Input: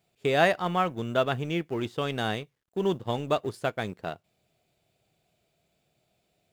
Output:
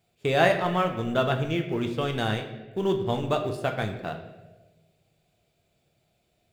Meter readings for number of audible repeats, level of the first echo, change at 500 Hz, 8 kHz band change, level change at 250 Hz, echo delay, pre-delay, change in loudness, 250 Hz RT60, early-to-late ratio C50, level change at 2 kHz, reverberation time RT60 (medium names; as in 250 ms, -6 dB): no echo, no echo, +2.0 dB, +1.0 dB, +2.5 dB, no echo, 9 ms, +2.0 dB, 1.3 s, 8.5 dB, +1.5 dB, 1.2 s